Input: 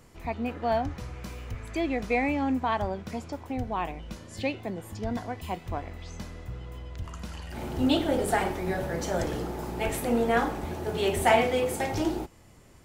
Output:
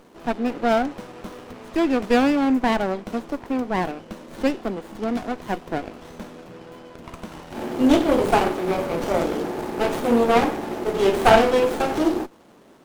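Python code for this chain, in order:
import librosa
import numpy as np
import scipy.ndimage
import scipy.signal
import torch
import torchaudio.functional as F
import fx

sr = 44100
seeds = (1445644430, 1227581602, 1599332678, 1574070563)

y = scipy.signal.sosfilt(scipy.signal.butter(4, 210.0, 'highpass', fs=sr, output='sos'), x)
y = fx.running_max(y, sr, window=17)
y = y * librosa.db_to_amplitude(8.5)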